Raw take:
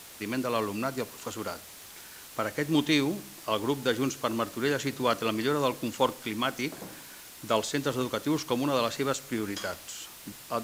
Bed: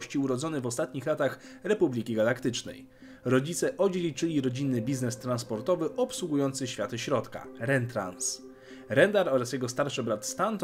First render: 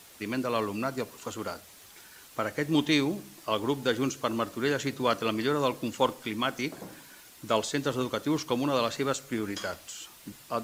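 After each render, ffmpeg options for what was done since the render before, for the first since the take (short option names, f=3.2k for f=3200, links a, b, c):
-af "afftdn=nr=6:nf=-48"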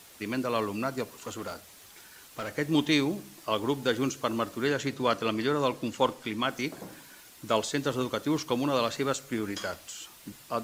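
-filter_complex "[0:a]asettb=1/sr,asplit=3[a][b][c];[a]atrim=end=1.184[d];[b]atrim=start=1.18:end=2.54,asetpts=PTS-STARTPTS,afade=t=in:d=0.004:c=qsin,afade=t=out:st=1.356:d=0.004:c=qsin,volume=31dB,asoftclip=hard,volume=-31dB[e];[c]atrim=start=2.536[f];[d][e]acrossfade=d=0.004:c1=hsin:c2=qsin[g];[g][f]acrossfade=d=0.004:c1=qsin:c2=hsin,asettb=1/sr,asplit=3[h][i][j];[h]atrim=end=4.674[k];[i]atrim=start=4.67:end=6.5,asetpts=PTS-STARTPTS,afade=t=in:d=0.004:c=qsin,afade=t=out:st=1.826:d=0.004:c=qsin,highshelf=f=11k:g=-7.5[l];[j]atrim=start=6.496[m];[k][l]acrossfade=d=0.004:c1=hsin:c2=qsin[n];[n][m]acrossfade=d=0.004:c1=qsin:c2=hsin"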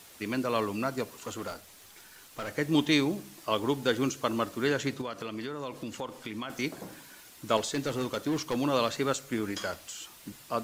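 -filter_complex "[0:a]asettb=1/sr,asplit=3[a][b][c];[a]atrim=end=1.514[d];[b]atrim=start=1.51:end=2.48,asetpts=PTS-STARTPTS,afade=t=in:d=0.004:c=qsin,afade=t=out:st=0.966:d=0.004:c=qsin,aeval=exprs='if(lt(val(0),0),0.708*val(0),val(0))':c=same[e];[c]atrim=start=2.476[f];[d][e]acrossfade=d=0.004:c1=hsin:c2=qsin[g];[g][f]acrossfade=d=0.004:c1=qsin:c2=hsin,asettb=1/sr,asplit=3[h][i][j];[h]atrim=end=5.014[k];[i]atrim=start=5.01:end=6.5,asetpts=PTS-STARTPTS,afade=t=in:d=0.004:c=qsin,afade=t=out:st=1.486:d=0.004:c=qsin,acompressor=threshold=-34dB:ratio=4:attack=3.2:release=140:knee=1:detection=peak[l];[j]atrim=start=6.496[m];[k][l]acrossfade=d=0.004:c1=hsin:c2=qsin[n];[n][m]acrossfade=d=0.004:c1=qsin:c2=hsin,asettb=1/sr,asplit=3[o][p][q];[o]atrim=end=7.574[r];[p]atrim=start=7.57:end=8.55,asetpts=PTS-STARTPTS,afade=t=in:d=0.004:c=qsin,afade=t=out:st=0.976:d=0.004:c=qsin,volume=25dB,asoftclip=hard,volume=-25dB[s];[q]atrim=start=8.546[t];[r][s]acrossfade=d=0.004:c1=hsin:c2=qsin[u];[u][t]acrossfade=d=0.004:c1=qsin:c2=hsin"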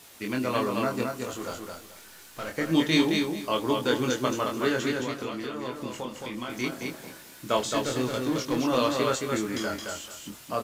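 -filter_complex "[0:a]asplit=2[a][b];[b]adelay=24,volume=-3.5dB[c];[a][c]amix=inputs=2:normalize=0,asplit=2[d][e];[e]aecho=0:1:219|438|657:0.631|0.139|0.0305[f];[d][f]amix=inputs=2:normalize=0"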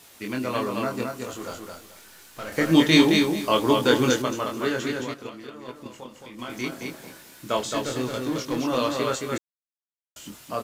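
-filter_complex "[0:a]asettb=1/sr,asplit=3[a][b][c];[a]atrim=end=4.884[d];[b]atrim=start=4.88:end=6.39,asetpts=PTS-STARTPTS,afade=t=in:d=0.004:c=qsin,afade=t=out:st=1.506:d=0.004:c=qsin,agate=range=-7dB:threshold=-33dB:ratio=16:release=100:detection=peak[e];[c]atrim=start=6.386[f];[d][e]acrossfade=d=0.004:c1=hsin:c2=qsin[g];[g][f]acrossfade=d=0.004:c1=qsin:c2=hsin,asplit=5[h][i][j][k][l];[h]atrim=end=2.522[m];[i]atrim=start=2.518:end=4.222,asetpts=PTS-STARTPTS,volume=6dB[n];[j]atrim=start=4.218:end=9.38,asetpts=PTS-STARTPTS,afade=t=out:st=5.158:d=0.004:c=hsin[o];[k]atrim=start=9.38:end=10.16,asetpts=PTS-STARTPTS,volume=0[p];[l]atrim=start=10.16,asetpts=PTS-STARTPTS,afade=t=in:d=0.004:c=hsin[q];[m][n]acrossfade=d=0.004:c1=hsin:c2=hsin[r];[o][p][q]concat=n=3:v=0:a=1[s];[r][s]acrossfade=d=0.004:c1=hsin:c2=hsin"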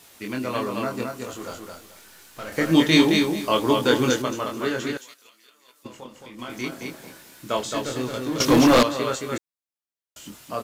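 -filter_complex "[0:a]asettb=1/sr,asplit=3[a][b][c];[a]atrim=end=4.974[d];[b]atrim=start=4.97:end=5.85,asetpts=PTS-STARTPTS,afade=t=in:d=0.004:c=qsin,afade=t=out:st=0.876:d=0.004:c=qsin,aderivative[e];[c]atrim=start=5.846[f];[d][e]acrossfade=d=0.004:c1=hsin:c2=qsin[g];[g][f]acrossfade=d=0.004:c1=qsin:c2=hsin,asettb=1/sr,asplit=3[h][i][j];[h]atrim=end=8.404[k];[i]atrim=start=8.4:end=8.83,asetpts=PTS-STARTPTS,afade=t=in:d=0.004:c=qsin,afade=t=out:st=0.426:d=0.004:c=qsin,aeval=exprs='0.299*sin(PI/2*3.16*val(0)/0.299)':c=same[l];[j]atrim=start=8.826[m];[k][l]acrossfade=d=0.004:c1=hsin:c2=qsin[n];[n][m]acrossfade=d=0.004:c1=qsin:c2=hsin"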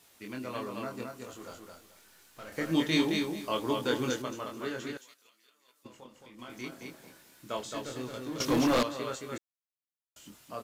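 -af "volume=-10.5dB"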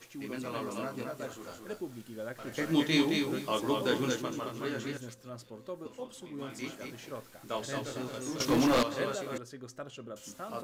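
-filter_complex "[1:a]volume=-14.5dB[a];[0:a][a]amix=inputs=2:normalize=0"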